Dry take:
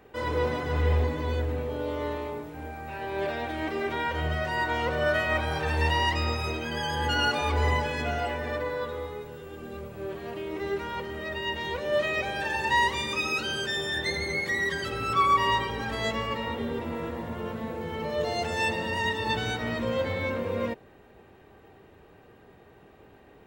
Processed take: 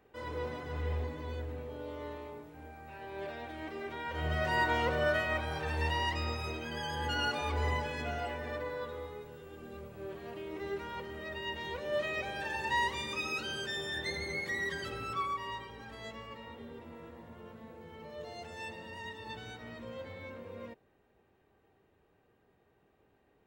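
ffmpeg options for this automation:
ffmpeg -i in.wav -af "volume=-1dB,afade=type=in:start_time=4.04:duration=0.5:silence=0.316228,afade=type=out:start_time=4.54:duration=0.87:silence=0.473151,afade=type=out:start_time=14.89:duration=0.49:silence=0.375837" out.wav

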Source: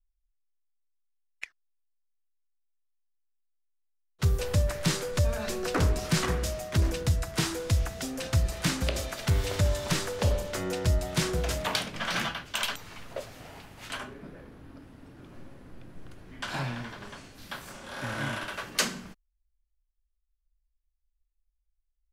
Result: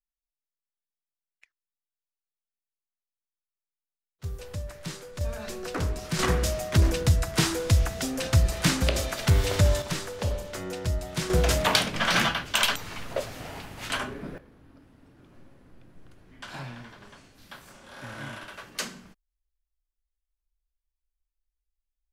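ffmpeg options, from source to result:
ffmpeg -i in.wav -af "asetnsamples=nb_out_samples=441:pad=0,asendcmd='4.24 volume volume -10dB;5.21 volume volume -4dB;6.19 volume volume 4.5dB;9.82 volume volume -3dB;11.3 volume volume 7dB;14.38 volume volume -6dB',volume=-19.5dB" out.wav

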